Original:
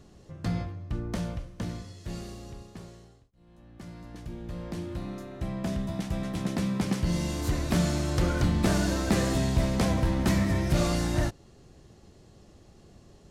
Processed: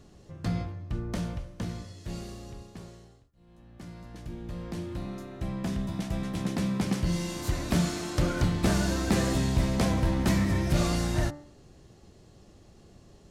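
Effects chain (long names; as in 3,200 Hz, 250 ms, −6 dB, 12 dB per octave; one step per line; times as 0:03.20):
hum removal 73.24 Hz, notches 29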